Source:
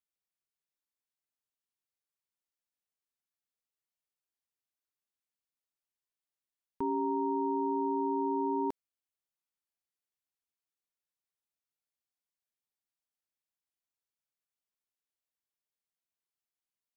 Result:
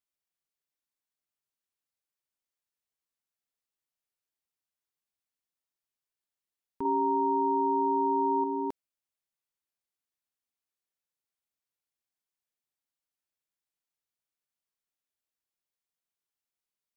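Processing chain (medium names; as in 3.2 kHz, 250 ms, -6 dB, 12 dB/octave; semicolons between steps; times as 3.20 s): 6.85–8.44 s: peaking EQ 720 Hz +10 dB 1.2 oct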